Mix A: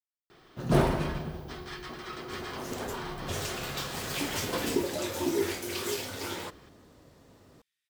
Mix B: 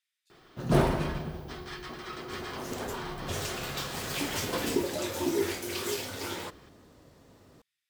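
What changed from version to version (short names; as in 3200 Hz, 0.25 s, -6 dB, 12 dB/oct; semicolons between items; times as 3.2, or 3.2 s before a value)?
speech: entry -0.55 s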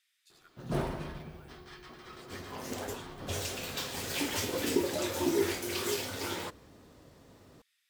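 speech +9.5 dB; first sound -9.0 dB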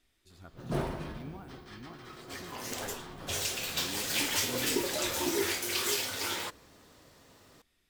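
speech: remove HPF 1500 Hz 24 dB/oct; second sound: add tilt shelf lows -5.5 dB, about 790 Hz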